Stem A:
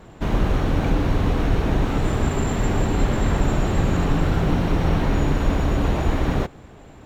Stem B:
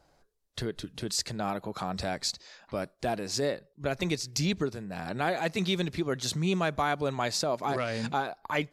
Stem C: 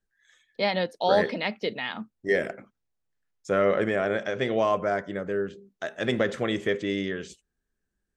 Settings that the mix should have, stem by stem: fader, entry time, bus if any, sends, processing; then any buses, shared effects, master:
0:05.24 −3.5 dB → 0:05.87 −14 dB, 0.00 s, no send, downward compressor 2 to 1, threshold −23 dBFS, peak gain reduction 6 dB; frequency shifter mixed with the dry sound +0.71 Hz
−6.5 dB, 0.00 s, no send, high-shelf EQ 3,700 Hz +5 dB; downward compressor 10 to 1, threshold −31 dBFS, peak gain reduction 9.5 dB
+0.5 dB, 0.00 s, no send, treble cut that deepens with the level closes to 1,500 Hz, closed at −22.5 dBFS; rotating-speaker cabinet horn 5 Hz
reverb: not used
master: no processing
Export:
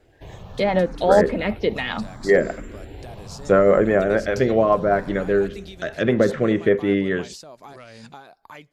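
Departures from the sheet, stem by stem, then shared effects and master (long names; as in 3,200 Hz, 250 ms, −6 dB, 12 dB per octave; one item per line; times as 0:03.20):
stem A −3.5 dB → −10.5 dB
stem C +0.5 dB → +10.0 dB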